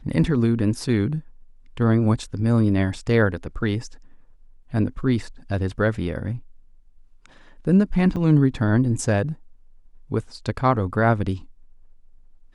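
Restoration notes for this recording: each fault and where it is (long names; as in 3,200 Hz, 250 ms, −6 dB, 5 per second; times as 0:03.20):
0:08.16–0:08.17: drop-out 6.5 ms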